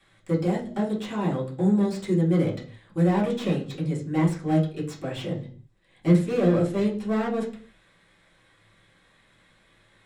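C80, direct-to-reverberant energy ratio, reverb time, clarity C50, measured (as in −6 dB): 15.0 dB, −7.5 dB, non-exponential decay, 9.5 dB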